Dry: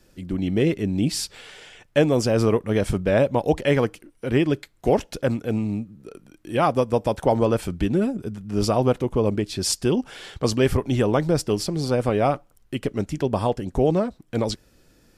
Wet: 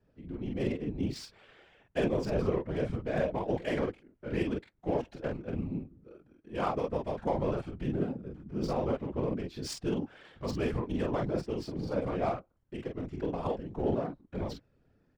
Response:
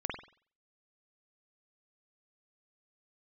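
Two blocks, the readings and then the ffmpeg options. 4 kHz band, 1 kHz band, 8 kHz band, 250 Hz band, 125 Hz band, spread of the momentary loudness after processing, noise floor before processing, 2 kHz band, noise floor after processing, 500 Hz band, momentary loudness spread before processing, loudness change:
−15.0 dB, −10.5 dB, −19.5 dB, −11.0 dB, −11.5 dB, 9 LU, −59 dBFS, −11.5 dB, −70 dBFS, −11.0 dB, 8 LU, −11.0 dB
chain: -af "aecho=1:1:25|45:0.473|0.708,adynamicsmooth=sensitivity=2:basefreq=2000,afftfilt=real='hypot(re,im)*cos(2*PI*random(0))':imag='hypot(re,im)*sin(2*PI*random(1))':win_size=512:overlap=0.75,volume=-7dB"

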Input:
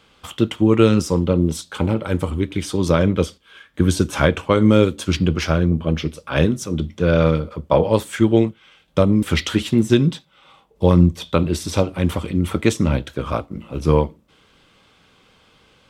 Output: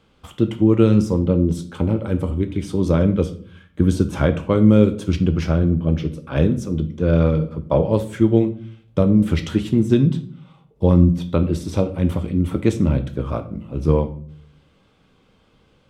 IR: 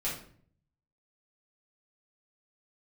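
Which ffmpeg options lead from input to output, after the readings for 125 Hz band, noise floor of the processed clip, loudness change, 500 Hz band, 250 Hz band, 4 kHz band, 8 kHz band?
+1.0 dB, −58 dBFS, 0.0 dB, −2.0 dB, +0.5 dB, −9.0 dB, can't be measured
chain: -filter_complex "[0:a]tiltshelf=frequency=760:gain=5.5,asplit=2[link_01][link_02];[1:a]atrim=start_sample=2205,adelay=15[link_03];[link_02][link_03]afir=irnorm=-1:irlink=0,volume=-14.5dB[link_04];[link_01][link_04]amix=inputs=2:normalize=0,volume=-4.5dB"

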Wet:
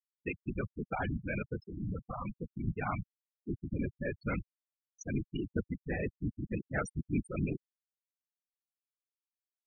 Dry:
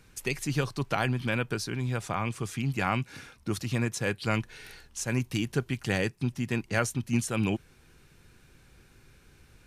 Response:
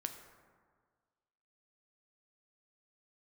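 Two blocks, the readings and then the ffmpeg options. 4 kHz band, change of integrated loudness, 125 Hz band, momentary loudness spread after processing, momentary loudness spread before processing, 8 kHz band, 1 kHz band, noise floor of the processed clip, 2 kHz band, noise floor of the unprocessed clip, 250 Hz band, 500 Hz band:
−21.5 dB, −7.5 dB, −8.0 dB, 6 LU, 7 LU, −19.0 dB, −8.0 dB, below −85 dBFS, −9.5 dB, −59 dBFS, −5.5 dB, −7.0 dB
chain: -af "afftfilt=real='hypot(re,im)*cos(2*PI*random(0))':imag='hypot(re,im)*sin(2*PI*random(1))':win_size=512:overlap=0.75,afftfilt=real='re*gte(hypot(re,im),0.0447)':imag='im*gte(hypot(re,im),0.0447)':win_size=1024:overlap=0.75"

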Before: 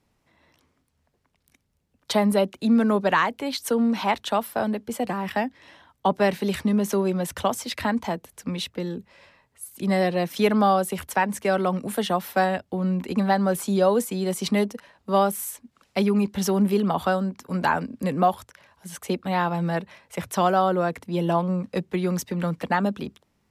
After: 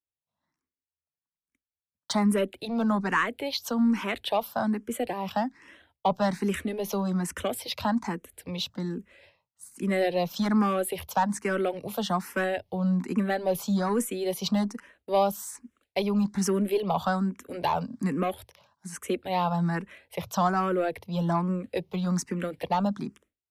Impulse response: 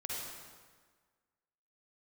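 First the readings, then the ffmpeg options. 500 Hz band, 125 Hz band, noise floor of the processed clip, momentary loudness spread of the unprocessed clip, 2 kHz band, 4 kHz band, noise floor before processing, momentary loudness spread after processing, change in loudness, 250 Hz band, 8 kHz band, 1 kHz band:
−5.0 dB, −3.0 dB, below −85 dBFS, 10 LU, −4.0 dB, −2.5 dB, −71 dBFS, 9 LU, −4.0 dB, −3.5 dB, −3.0 dB, −4.5 dB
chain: -filter_complex "[0:a]agate=range=-33dB:threshold=-49dB:ratio=3:detection=peak,aeval=exprs='0.355*(cos(1*acos(clip(val(0)/0.355,-1,1)))-cos(1*PI/2))+0.0224*(cos(5*acos(clip(val(0)/0.355,-1,1)))-cos(5*PI/2))':channel_layout=same,asplit=2[link_01][link_02];[link_02]afreqshift=1.2[link_03];[link_01][link_03]amix=inputs=2:normalize=1,volume=-2dB"

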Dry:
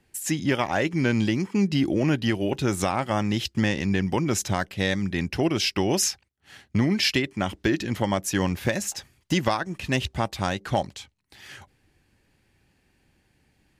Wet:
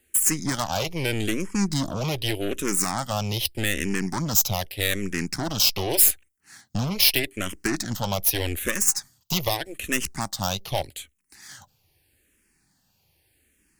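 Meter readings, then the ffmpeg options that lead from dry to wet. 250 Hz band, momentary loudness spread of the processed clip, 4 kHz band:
−5.0 dB, 10 LU, +3.5 dB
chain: -filter_complex "[0:a]aeval=exprs='0.335*(cos(1*acos(clip(val(0)/0.335,-1,1)))-cos(1*PI/2))+0.0473*(cos(8*acos(clip(val(0)/0.335,-1,1)))-cos(8*PI/2))':channel_layout=same,aemphasis=mode=production:type=75fm,asplit=2[link_01][link_02];[link_02]afreqshift=-0.82[link_03];[link_01][link_03]amix=inputs=2:normalize=1,volume=-1dB"

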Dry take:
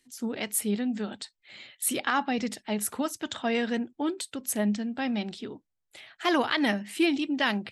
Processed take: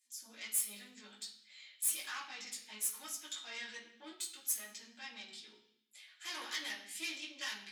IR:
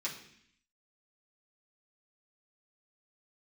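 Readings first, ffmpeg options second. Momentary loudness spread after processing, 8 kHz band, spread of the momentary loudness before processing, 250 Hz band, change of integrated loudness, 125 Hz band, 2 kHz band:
17 LU, −3.5 dB, 11 LU, −30.0 dB, −11.0 dB, can't be measured, −12.5 dB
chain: -filter_complex "[0:a]flanger=delay=17:depth=2.2:speed=0.62,aeval=exprs='(tanh(17.8*val(0)+0.6)-tanh(0.6))/17.8':channel_layout=same,aderivative[link_01];[1:a]atrim=start_sample=2205,asetrate=42336,aresample=44100[link_02];[link_01][link_02]afir=irnorm=-1:irlink=0,volume=2.5dB"

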